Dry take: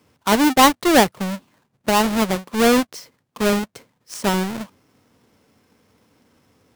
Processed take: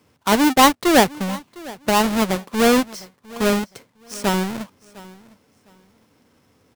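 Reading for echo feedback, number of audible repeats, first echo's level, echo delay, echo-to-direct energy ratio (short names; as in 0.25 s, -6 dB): 22%, 2, -21.0 dB, 0.706 s, -21.0 dB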